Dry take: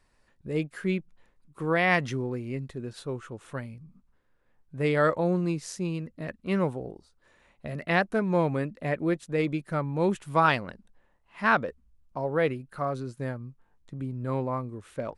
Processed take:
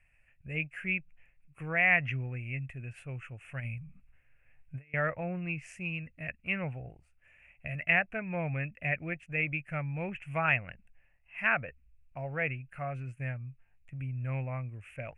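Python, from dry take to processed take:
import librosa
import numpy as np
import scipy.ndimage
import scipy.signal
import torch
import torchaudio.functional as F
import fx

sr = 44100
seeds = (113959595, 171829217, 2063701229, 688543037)

y = fx.env_lowpass_down(x, sr, base_hz=2000.0, full_db=-20.0)
y = fx.curve_eq(y, sr, hz=(130.0, 200.0, 400.0, 700.0, 1000.0, 2600.0, 3800.0, 8400.0), db=(0, -12, -18, -5, -16, 12, -27, -8))
y = fx.over_compress(y, sr, threshold_db=-41.0, ratio=-0.5, at=(3.6, 4.94))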